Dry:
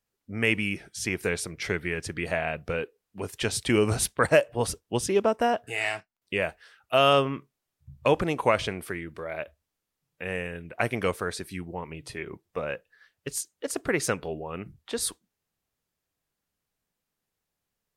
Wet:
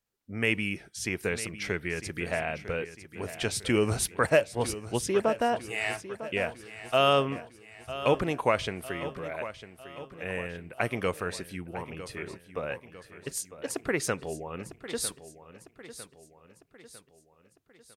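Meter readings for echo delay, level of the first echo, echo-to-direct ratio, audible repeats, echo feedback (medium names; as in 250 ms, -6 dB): 952 ms, -13.5 dB, -12.5 dB, 4, 49%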